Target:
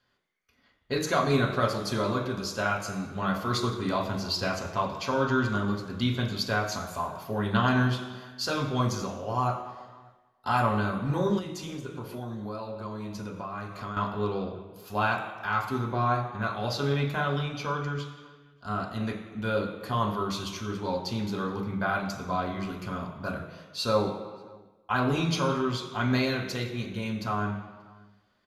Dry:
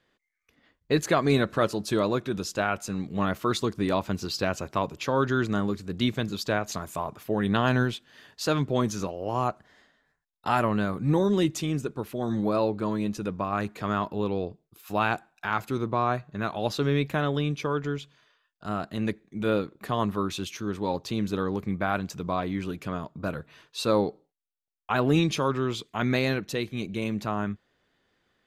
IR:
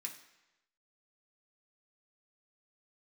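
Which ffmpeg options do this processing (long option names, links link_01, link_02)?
-filter_complex "[0:a]equalizer=frequency=8200:width=4.7:gain=-6.5[link_01];[1:a]atrim=start_sample=2205,afade=type=out:start_time=0.36:duration=0.01,atrim=end_sample=16317,asetrate=25578,aresample=44100[link_02];[link_01][link_02]afir=irnorm=-1:irlink=0,asettb=1/sr,asplit=3[link_03][link_04][link_05];[link_03]atrim=end=11.384[link_06];[link_04]atrim=start=11.38:end=13.97,asetpts=PTS-STARTPTS,afade=type=in:duration=0.004:curve=qsin,afade=type=out:start_time=2.586:duration=0.004:curve=qsin,acompressor=threshold=-32dB:ratio=6[link_07];[link_05]atrim=start=13.966[link_08];[link_06][link_07]acrossfade=duration=0.004:curve1=hsin:curve2=qsin[link_09];[link_09][link_08]acrossfade=duration=0.004:curve1=qsin:curve2=hsin,asplit=2[link_10][link_11];[link_11]adelay=583.1,volume=-26dB,highshelf=frequency=4000:gain=-13.1[link_12];[link_10][link_12]amix=inputs=2:normalize=0,volume=-1.5dB"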